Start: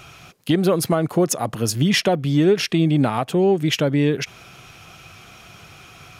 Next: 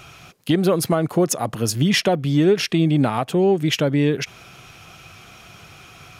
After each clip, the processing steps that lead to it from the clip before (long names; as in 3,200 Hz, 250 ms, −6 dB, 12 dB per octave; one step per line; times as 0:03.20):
no processing that can be heard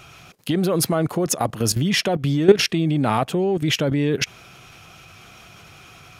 output level in coarse steps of 13 dB
level +6.5 dB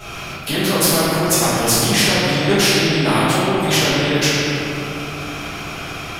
convolution reverb RT60 2.0 s, pre-delay 4 ms, DRR −15 dB
every bin compressed towards the loudest bin 2 to 1
level −15.5 dB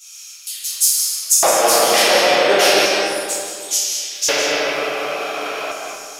auto-filter high-pass square 0.35 Hz 580–6,700 Hz
comb and all-pass reverb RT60 2.2 s, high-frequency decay 0.45×, pre-delay 120 ms, DRR 2 dB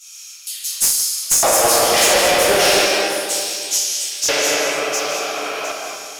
asymmetric clip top −12.5 dBFS
delay with a high-pass on its return 708 ms, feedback 31%, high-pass 4,600 Hz, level −3.5 dB